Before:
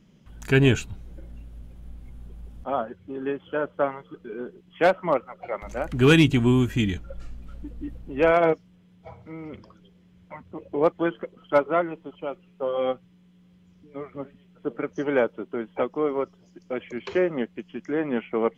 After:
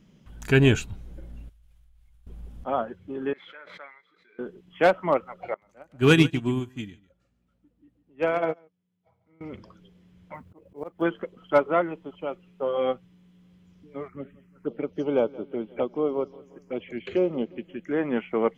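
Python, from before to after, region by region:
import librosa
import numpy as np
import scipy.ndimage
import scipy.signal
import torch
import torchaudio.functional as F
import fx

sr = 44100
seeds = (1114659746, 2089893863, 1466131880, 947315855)

y = fx.chain(x, sr, fx.tone_stack(knobs='10-0-10'),
    fx.level_steps(step_db=14), at=(1.49, 2.27))
y = fx.chain(y, sr, fx.double_bandpass(hz=2900.0, octaves=0.87),
    fx.pre_swell(db_per_s=43.0), at=(3.33, 4.39))
y = fx.chain(y, sr, fx.highpass(hz=80.0, slope=24),
    fx.echo_single(ms=145, db=-12.5),
    fx.upward_expand(threshold_db=-29.0, expansion=2.5), at=(5.54, 9.41))
y = fx.chain(y, sr, fx.lowpass(hz=2100.0, slope=6),
    fx.quant_companded(bits=8),
    fx.auto_swell(attack_ms=275.0), at=(10.34, 11.02))
y = fx.chain(y, sr, fx.env_phaser(low_hz=530.0, high_hz=1800.0, full_db=-24.5),
    fx.echo_feedback(ms=176, feedback_pct=52, wet_db=-21.0), at=(14.08, 17.91))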